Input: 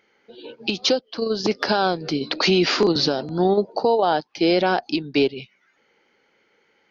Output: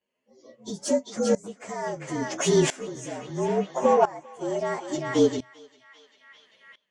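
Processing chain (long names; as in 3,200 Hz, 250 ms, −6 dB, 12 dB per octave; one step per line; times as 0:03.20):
partials spread apart or drawn together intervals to 114%
0:02.83–0:04.59: parametric band 4,300 Hz −7.5 dB 0.67 octaves
in parallel at −8.5 dB: soft clipping −19.5 dBFS, distortion −12 dB
on the sum: thirty-one-band graphic EQ 125 Hz +4 dB, 250 Hz +8 dB, 630 Hz +8 dB, 4,000 Hz −10 dB
feedback echo with a band-pass in the loop 396 ms, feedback 62%, band-pass 2,300 Hz, level −4 dB
on a send at −11 dB: convolution reverb, pre-delay 3 ms
on the sum: tremolo with a ramp in dB swelling 0.74 Hz, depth 20 dB
level −1 dB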